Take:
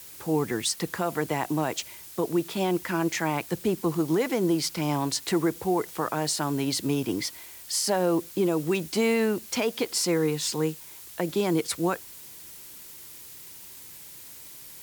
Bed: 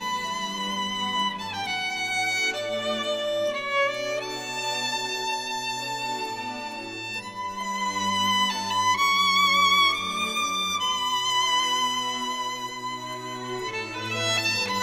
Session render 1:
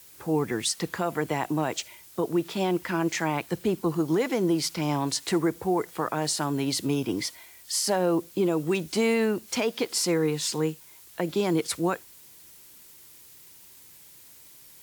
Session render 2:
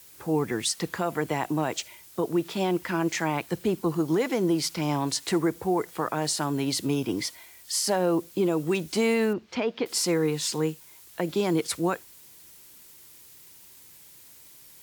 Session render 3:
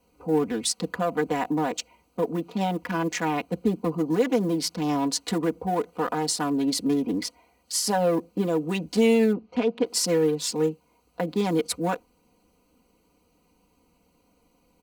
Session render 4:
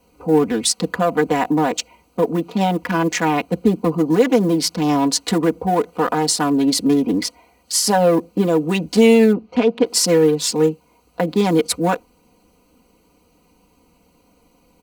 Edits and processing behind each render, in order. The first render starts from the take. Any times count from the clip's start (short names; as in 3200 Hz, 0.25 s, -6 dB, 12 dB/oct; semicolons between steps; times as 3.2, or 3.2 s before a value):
noise print and reduce 6 dB
9.33–9.86 air absorption 230 m
Wiener smoothing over 25 samples; comb 4.1 ms, depth 95%
gain +8 dB